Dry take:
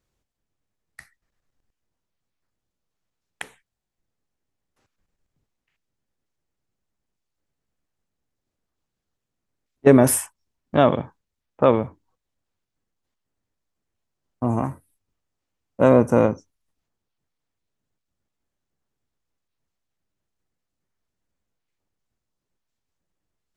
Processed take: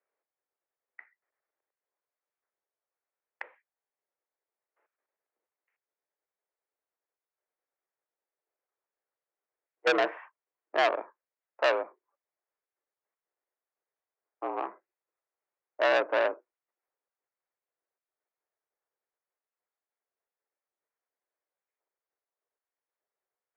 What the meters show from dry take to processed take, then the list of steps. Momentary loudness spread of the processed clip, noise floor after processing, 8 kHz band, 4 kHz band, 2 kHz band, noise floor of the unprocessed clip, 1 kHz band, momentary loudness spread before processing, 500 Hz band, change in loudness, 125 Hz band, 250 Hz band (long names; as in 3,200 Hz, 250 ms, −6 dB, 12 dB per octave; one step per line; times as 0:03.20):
21 LU, below −85 dBFS, below −25 dB, +2.0 dB, +2.5 dB, −83 dBFS, −5.5 dB, 21 LU, −9.5 dB, −9.5 dB, below −40 dB, −22.0 dB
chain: single-sideband voice off tune +67 Hz 360–2,200 Hz
saturating transformer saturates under 2,100 Hz
level −4.5 dB